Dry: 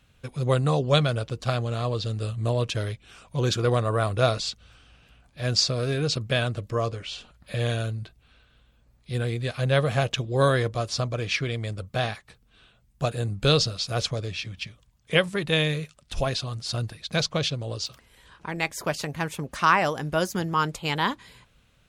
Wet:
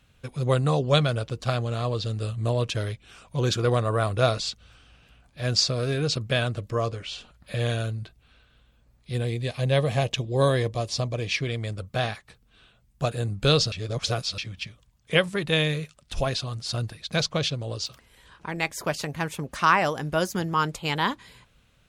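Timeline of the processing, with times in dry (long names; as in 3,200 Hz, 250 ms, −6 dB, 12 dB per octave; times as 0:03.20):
0:09.17–0:11.47: parametric band 1,400 Hz −13 dB 0.32 octaves
0:13.72–0:14.38: reverse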